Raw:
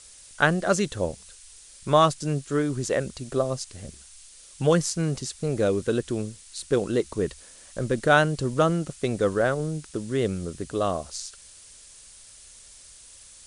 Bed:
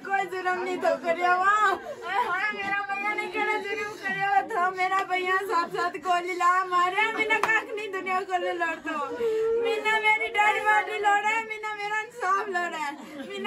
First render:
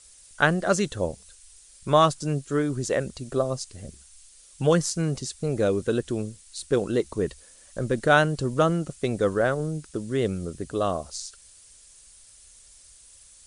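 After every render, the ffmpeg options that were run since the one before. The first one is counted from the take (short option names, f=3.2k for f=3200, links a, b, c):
-af "afftdn=nr=6:nf=-49"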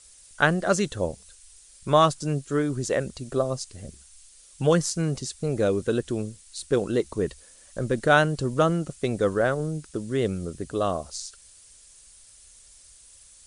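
-af anull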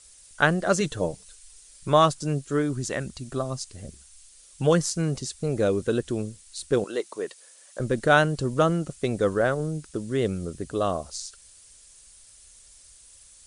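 -filter_complex "[0:a]asettb=1/sr,asplit=3[a][b][c];[a]atrim=end=0.804[d];[b]atrim=start=0.8:end=1.89,asetpts=PTS-STARTPTS,afade=t=in:d=0.004:c=qsin,afade=t=out:st=1.086:d=0.004:c=qsin,aecho=1:1:6.6:0.53,atrim=end_sample=48069[e];[c]atrim=start=1.886[f];[d][e]acrossfade=d=0.004:c1=hsin:c2=qsin[g];[g][f]acrossfade=d=0.004:c1=qsin:c2=hsin,asettb=1/sr,asplit=3[h][i][j];[h]atrim=end=2.734[k];[i]atrim=start=2.73:end=3.61,asetpts=PTS-STARTPTS,afade=t=in:d=0.004:c=qsin,afade=t=out:st=0.876:d=0.004:c=qsin,equalizer=f=490:t=o:w=0.74:g=-9[l];[j]atrim=start=3.606[m];[k][l]acrossfade=d=0.004:c1=hsin:c2=qsin[n];[n][m]acrossfade=d=0.004:c1=qsin:c2=hsin,asettb=1/sr,asplit=3[o][p][q];[o]atrim=end=6.844[r];[p]atrim=start=6.84:end=7.8,asetpts=PTS-STARTPTS,afade=t=in:d=0.004:c=qsin,afade=t=out:st=0.956:d=0.004:c=qsin,highpass=480[s];[q]atrim=start=7.796[t];[r][s]acrossfade=d=0.004:c1=hsin:c2=qsin[u];[u][t]acrossfade=d=0.004:c1=qsin:c2=hsin"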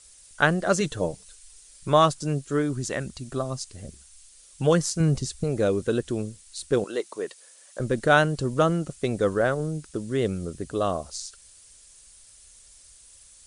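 -filter_complex "[0:a]asettb=1/sr,asplit=3[a][b][c];[a]atrim=end=5.004[d];[b]atrim=start=5:end=5.44,asetpts=PTS-STARTPTS,afade=t=in:d=0.004:c=qsin,afade=t=out:st=0.436:d=0.004:c=qsin,lowshelf=f=150:g=11.5[e];[c]atrim=start=5.436[f];[d][e]acrossfade=d=0.004:c1=hsin:c2=qsin[g];[g][f]acrossfade=d=0.004:c1=qsin:c2=hsin"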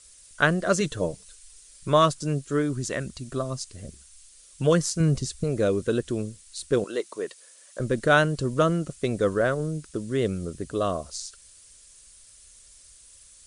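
-af "bandreject=f=810:w=5.3"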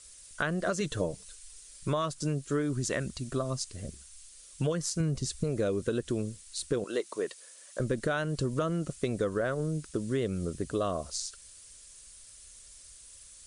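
-af "alimiter=limit=-14dB:level=0:latency=1:release=240,acompressor=threshold=-26dB:ratio=6"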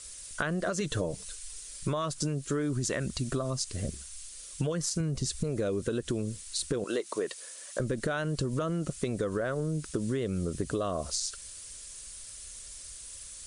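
-filter_complex "[0:a]asplit=2[a][b];[b]alimiter=level_in=2.5dB:limit=-24dB:level=0:latency=1:release=67,volume=-2.5dB,volume=1.5dB[c];[a][c]amix=inputs=2:normalize=0,acompressor=threshold=-27dB:ratio=6"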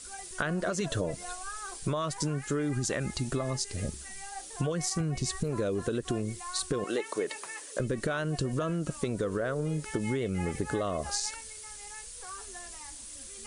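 -filter_complex "[1:a]volume=-20.5dB[a];[0:a][a]amix=inputs=2:normalize=0"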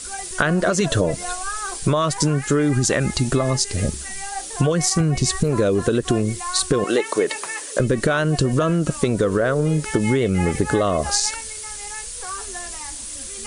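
-af "volume=12dB"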